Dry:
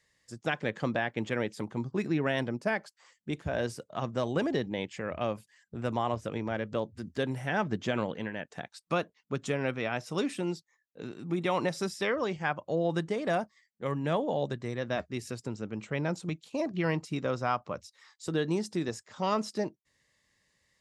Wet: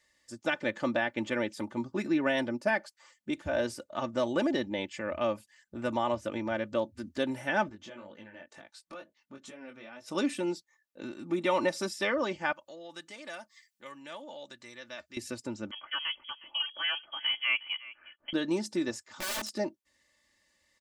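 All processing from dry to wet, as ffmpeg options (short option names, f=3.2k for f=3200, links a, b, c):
-filter_complex "[0:a]asettb=1/sr,asplit=3[a][b][c];[a]atrim=end=7.694[d];[b]atrim=start=7.69:end=10.08,asetpts=PTS-STARTPTS,afade=t=in:d=0.004:c=qsin,afade=t=out:st=2.386:d=0.004:c=qsin,acompressor=threshold=-44dB:ratio=3:attack=3.2:release=140:knee=1:detection=peak,flanger=delay=18.5:depth=3.8:speed=2.1[e];[c]atrim=start=10.076[f];[d][e]acrossfade=d=0.004:c1=hsin:c2=qsin[g];[g][f]acrossfade=d=0.004:c1=qsin:c2=hsin,asettb=1/sr,asplit=3[h][i][j];[h]atrim=end=12.524[k];[i]atrim=start=12.52:end=15.17,asetpts=PTS-STARTPTS,afade=t=in:d=0.004:c=qsin,afade=t=out:st=2.646:d=0.004:c=qsin,acompressor=threshold=-58dB:ratio=1.5:attack=3.2:release=140:knee=1:detection=peak,tiltshelf=f=1.2k:g=-9[l];[j]atrim=start=15.166[m];[k][l]acrossfade=d=0.004:c1=hsin:c2=qsin[n];[n][m]acrossfade=d=0.004:c1=qsin:c2=hsin,asettb=1/sr,asplit=3[o][p][q];[o]atrim=end=15.714[r];[p]atrim=start=15.71:end=18.33,asetpts=PTS-STARTPTS,afade=t=in:d=0.004:c=qsin,afade=t=out:st=2.616:d=0.004:c=qsin,highpass=480,aecho=1:1:362:0.119,atrim=end_sample=115542,lowpass=f=3k:t=q:w=0.5098,lowpass=f=3k:t=q:w=0.6013,lowpass=f=3k:t=q:w=0.9,lowpass=f=3k:t=q:w=2.563,afreqshift=-3500[s];[q]atrim=start=18.326[t];[r][s]acrossfade=d=0.004:c1=hsin:c2=qsin[u];[u][t]acrossfade=d=0.004:c1=qsin:c2=hsin,asettb=1/sr,asplit=3[v][w][x];[v]atrim=end=19.064[y];[w]atrim=start=19.06:end=19.53,asetpts=PTS-STARTPTS,afade=t=in:d=0.004:c=qsin,afade=t=out:st=0.466:d=0.004:c=qsin,equalizer=f=140:w=4.8:g=-5.5,bandreject=f=580:w=5.2,aeval=exprs='(mod(35.5*val(0)+1,2)-1)/35.5':c=same[z];[x]atrim=start=19.526[aa];[y][z]acrossfade=d=0.004:c1=hsin:c2=qsin[ab];[ab][aa]acrossfade=d=0.004:c1=qsin:c2=hsin,lowshelf=f=180:g=-5.5,aecho=1:1:3.4:0.69"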